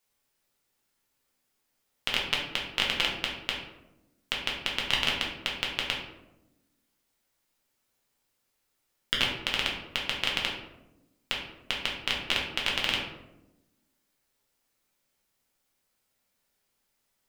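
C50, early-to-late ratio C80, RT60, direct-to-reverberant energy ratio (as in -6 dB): 4.0 dB, 7.0 dB, 0.95 s, -3.0 dB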